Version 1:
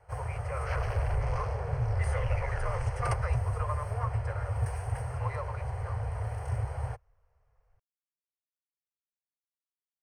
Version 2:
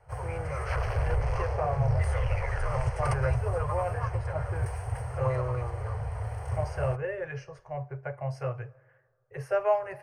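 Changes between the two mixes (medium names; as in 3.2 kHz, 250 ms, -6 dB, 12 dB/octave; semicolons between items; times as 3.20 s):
speech: unmuted; second sound: send on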